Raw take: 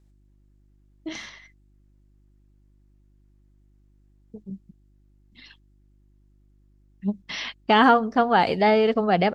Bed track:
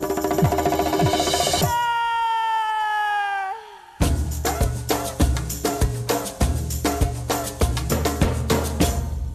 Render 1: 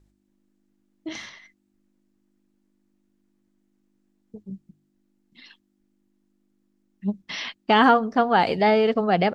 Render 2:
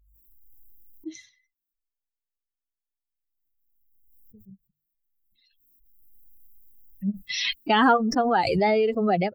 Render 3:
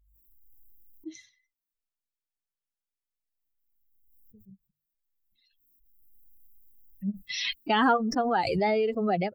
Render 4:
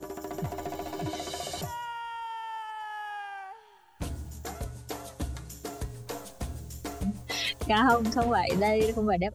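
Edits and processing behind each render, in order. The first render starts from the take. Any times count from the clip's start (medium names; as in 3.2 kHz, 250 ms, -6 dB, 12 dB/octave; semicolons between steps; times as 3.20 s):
de-hum 50 Hz, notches 3
expander on every frequency bin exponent 2; swell ahead of each attack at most 29 dB/s
trim -4 dB
add bed track -15.5 dB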